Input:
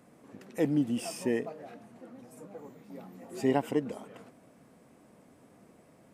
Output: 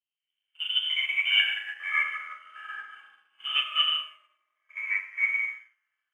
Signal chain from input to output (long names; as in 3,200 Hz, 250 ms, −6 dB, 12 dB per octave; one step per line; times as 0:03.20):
reversed piece by piece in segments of 50 ms
multi-voice chorus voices 4, 0.49 Hz, delay 22 ms, depth 2.9 ms
voice inversion scrambler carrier 3,300 Hz
high-pass filter 400 Hz 24 dB per octave
first difference
on a send: flutter between parallel walls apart 6.7 metres, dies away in 0.73 s
on the sum: dense smooth reverb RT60 1.8 s, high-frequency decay 0.35×, pre-delay 85 ms, DRR 0 dB
in parallel at −4.5 dB: dead-zone distortion −58 dBFS
on the sum: delay with pitch and tempo change per echo 162 ms, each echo −5 semitones, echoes 3
dynamic equaliser 2,200 Hz, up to +3 dB, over −46 dBFS, Q 4.8
expander for the loud parts 2.5 to 1, over −50 dBFS
level +8.5 dB